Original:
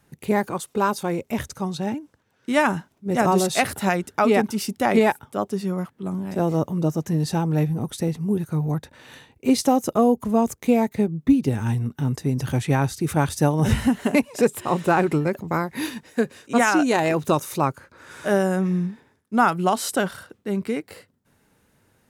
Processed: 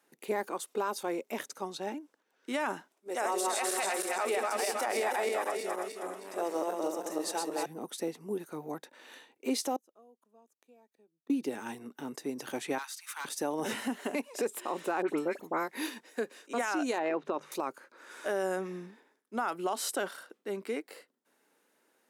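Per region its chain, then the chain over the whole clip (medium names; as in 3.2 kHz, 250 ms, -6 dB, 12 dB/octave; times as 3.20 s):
2.92–7.66 s: backward echo that repeats 158 ms, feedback 63%, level -2 dB + high-pass 430 Hz + peaking EQ 8.7 kHz +7 dB 0.58 oct
9.76–11.30 s: inverted gate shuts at -25 dBFS, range -33 dB + Butterworth band-stop 2.1 kHz, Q 6.4
12.78–13.25 s: steep high-pass 970 Hz 48 dB/octave + hard clipper -28 dBFS
15.02–15.68 s: band-stop 4.8 kHz, Q 8 + phase dispersion highs, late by 65 ms, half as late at 2.4 kHz
16.98–17.52 s: low-pass 2.4 kHz + hum notches 50/100/150/200 Hz
whole clip: high-pass 290 Hz 24 dB/octave; peak limiter -15.5 dBFS; trim -6.5 dB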